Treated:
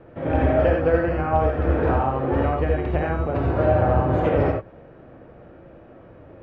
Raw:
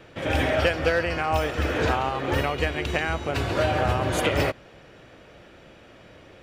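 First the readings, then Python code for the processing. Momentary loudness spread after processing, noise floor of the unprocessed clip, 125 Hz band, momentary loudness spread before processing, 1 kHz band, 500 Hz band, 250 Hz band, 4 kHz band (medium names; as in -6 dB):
5 LU, -50 dBFS, +5.5 dB, 4 LU, +2.5 dB, +4.5 dB, +5.5 dB, under -15 dB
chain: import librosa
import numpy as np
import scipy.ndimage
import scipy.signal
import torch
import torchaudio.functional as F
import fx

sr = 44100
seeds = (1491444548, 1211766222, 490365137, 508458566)

y = scipy.signal.sosfilt(scipy.signal.butter(2, 1000.0, 'lowpass', fs=sr, output='sos'), x)
y = fx.rev_gated(y, sr, seeds[0], gate_ms=110, shape='rising', drr_db=1.0)
y = y * librosa.db_to_amplitude(2.0)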